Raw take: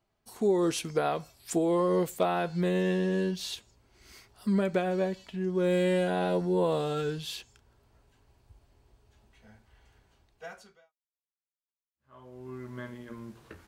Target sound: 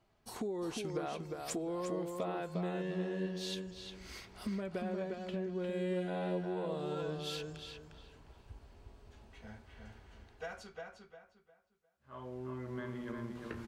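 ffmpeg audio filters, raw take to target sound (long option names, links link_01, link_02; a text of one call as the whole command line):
ffmpeg -i in.wav -filter_complex "[0:a]highshelf=frequency=8400:gain=-10,acompressor=threshold=-45dB:ratio=4,asplit=2[link_01][link_02];[link_02]adelay=354,lowpass=frequency=3600:poles=1,volume=-4dB,asplit=2[link_03][link_04];[link_04]adelay=354,lowpass=frequency=3600:poles=1,volume=0.29,asplit=2[link_05][link_06];[link_06]adelay=354,lowpass=frequency=3600:poles=1,volume=0.29,asplit=2[link_07][link_08];[link_08]adelay=354,lowpass=frequency=3600:poles=1,volume=0.29[link_09];[link_01][link_03][link_05][link_07][link_09]amix=inputs=5:normalize=0,volume=5dB" out.wav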